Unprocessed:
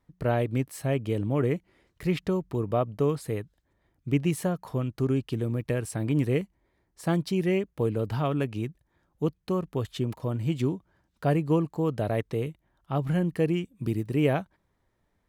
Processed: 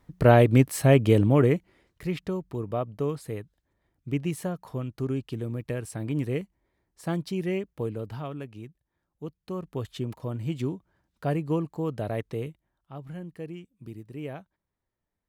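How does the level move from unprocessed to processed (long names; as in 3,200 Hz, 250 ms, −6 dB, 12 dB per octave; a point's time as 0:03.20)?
0:01.15 +9 dB
0:02.10 −3.5 dB
0:07.75 −3.5 dB
0:08.46 −10.5 dB
0:09.26 −10.5 dB
0:09.76 −3 dB
0:12.46 −3 dB
0:12.94 −13 dB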